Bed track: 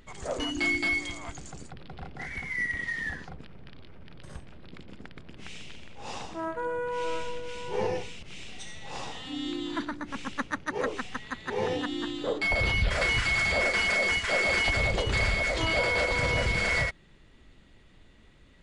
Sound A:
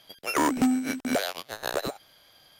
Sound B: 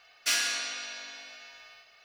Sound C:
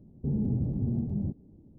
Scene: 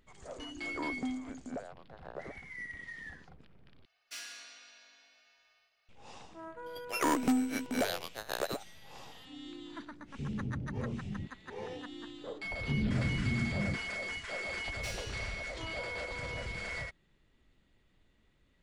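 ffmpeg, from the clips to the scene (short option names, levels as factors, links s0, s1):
-filter_complex "[1:a]asplit=2[s0][s1];[2:a]asplit=2[s2][s3];[3:a]asplit=2[s4][s5];[0:a]volume=0.224[s6];[s0]lowpass=1100[s7];[s6]asplit=2[s8][s9];[s8]atrim=end=3.854[s10];[s2]atrim=end=2.04,asetpts=PTS-STARTPTS,volume=0.133[s11];[s9]atrim=start=5.886[s12];[s7]atrim=end=2.59,asetpts=PTS-STARTPTS,volume=0.211,afade=t=in:d=0.004:c=hsin,afade=t=out:st=2.586:d=0.004:c=hsin,adelay=410[s13];[s1]atrim=end=2.59,asetpts=PTS-STARTPTS,volume=0.531,afade=t=in:d=0.004:c=hsin,afade=t=out:st=2.586:d=0.004:c=hsin,adelay=293706S[s14];[s4]atrim=end=1.78,asetpts=PTS-STARTPTS,volume=0.355,afade=t=in:d=0.004:c=hsin,afade=t=out:st=1.776:d=0.004:c=hsin,adelay=9950[s15];[s5]atrim=end=1.78,asetpts=PTS-STARTPTS,volume=0.668,afade=t=in:d=0.004:c=hsin,afade=t=out:st=1.776:d=0.004:c=hsin,adelay=12440[s16];[s3]atrim=end=2.04,asetpts=PTS-STARTPTS,volume=0.141,afade=t=in:d=0.004:c=hsin,afade=t=out:st=2.036:d=0.004:c=hsin,adelay=14570[s17];[s10][s11]acrossfade=d=0.004:c1=hsin:c2=hsin[s18];[s18][s12]acrossfade=d=0.004:c1=hsin:c2=hsin[s19];[s19][s13][s14][s15][s16][s17]amix=inputs=6:normalize=0"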